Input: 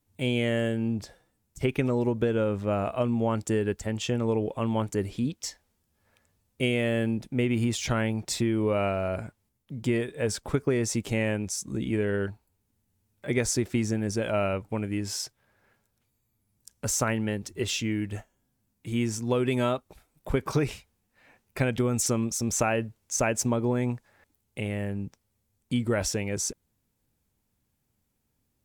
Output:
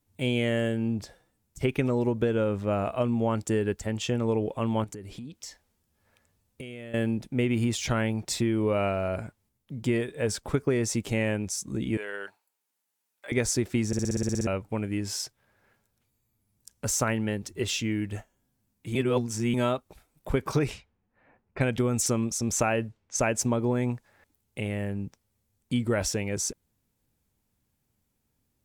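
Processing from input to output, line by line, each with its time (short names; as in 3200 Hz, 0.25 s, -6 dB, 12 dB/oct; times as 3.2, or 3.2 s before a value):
4.84–6.94 compressor 12:1, threshold -36 dBFS
11.97–13.32 HPF 780 Hz
13.87 stutter in place 0.06 s, 10 plays
18.95–19.54 reverse
20.59–23.58 low-pass opened by the level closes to 1300 Hz, open at -24.5 dBFS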